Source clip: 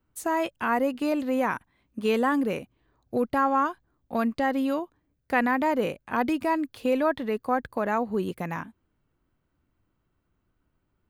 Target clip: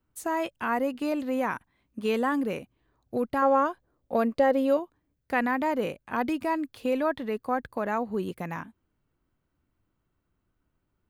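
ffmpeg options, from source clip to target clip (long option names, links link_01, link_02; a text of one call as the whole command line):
ffmpeg -i in.wav -filter_complex "[0:a]asettb=1/sr,asplit=3[link_01][link_02][link_03];[link_01]atrim=end=3.424[link_04];[link_02]atrim=start=3.42:end=4.77,asetpts=PTS-STARTPTS,afade=type=in:duration=0.004:curve=qsin,afade=type=out:start_time=1.346:duration=0.004:curve=qsin,equalizer=frequency=520:width_type=o:width=0.75:gain=11[link_05];[link_03]atrim=start=4.766[link_06];[link_04][link_05]acrossfade=duration=0.004:curve1=hsin:curve2=qsin[link_07];[link_07][link_06]acrossfade=duration=0.004:curve1=qsin:curve2=hsin,volume=-2.5dB" out.wav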